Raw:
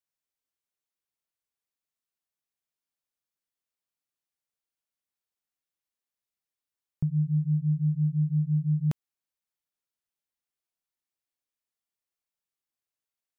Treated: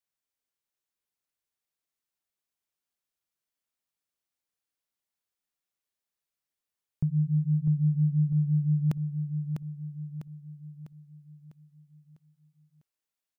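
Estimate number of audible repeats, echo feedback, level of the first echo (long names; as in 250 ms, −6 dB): 5, 48%, −6.5 dB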